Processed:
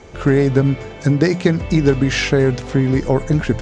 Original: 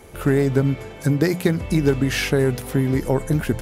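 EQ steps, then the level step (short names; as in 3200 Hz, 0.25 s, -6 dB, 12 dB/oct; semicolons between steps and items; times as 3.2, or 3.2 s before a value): steep low-pass 7200 Hz 48 dB/oct; +4.0 dB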